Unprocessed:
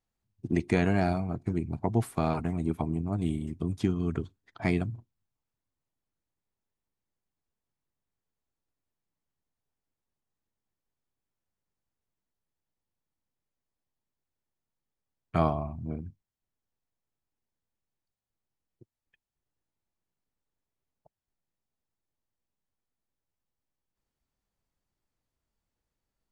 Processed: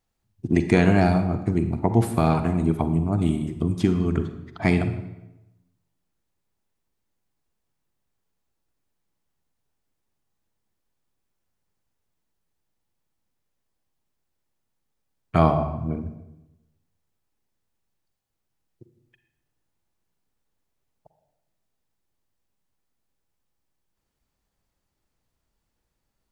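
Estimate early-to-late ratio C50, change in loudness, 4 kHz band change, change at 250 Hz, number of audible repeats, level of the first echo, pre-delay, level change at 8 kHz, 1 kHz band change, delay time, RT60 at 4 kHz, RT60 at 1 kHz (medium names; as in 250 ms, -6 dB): 9.0 dB, +7.5 dB, +7.5 dB, +8.0 dB, no echo, no echo, 39 ms, no reading, +7.5 dB, no echo, 0.70 s, 0.95 s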